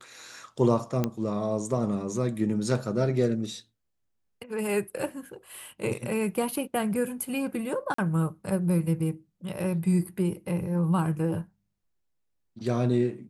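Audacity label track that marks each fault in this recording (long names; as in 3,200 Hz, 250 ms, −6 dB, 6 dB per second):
1.040000	1.040000	click −13 dBFS
7.940000	7.980000	drop-out 44 ms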